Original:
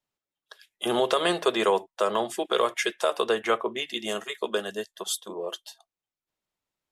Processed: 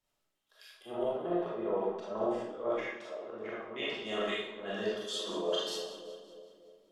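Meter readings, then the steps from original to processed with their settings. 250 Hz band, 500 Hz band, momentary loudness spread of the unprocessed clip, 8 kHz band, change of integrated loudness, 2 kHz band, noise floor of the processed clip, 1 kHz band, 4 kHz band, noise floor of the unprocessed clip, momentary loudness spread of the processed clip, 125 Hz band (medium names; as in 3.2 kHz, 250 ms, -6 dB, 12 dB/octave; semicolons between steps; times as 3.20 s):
-5.5 dB, -7.5 dB, 11 LU, -13.0 dB, -8.5 dB, -9.5 dB, -81 dBFS, -11.5 dB, -8.0 dB, under -85 dBFS, 11 LU, -4.0 dB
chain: low-pass that closes with the level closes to 700 Hz, closed at -21 dBFS; bass shelf 140 Hz +5.5 dB; two-band feedback delay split 630 Hz, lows 300 ms, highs 188 ms, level -15.5 dB; reverse; compression 5:1, threshold -36 dBFS, peak gain reduction 15 dB; reverse; slow attack 148 ms; algorithmic reverb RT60 0.73 s, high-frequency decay 0.9×, pre-delay 0 ms, DRR -7 dB; trim -1 dB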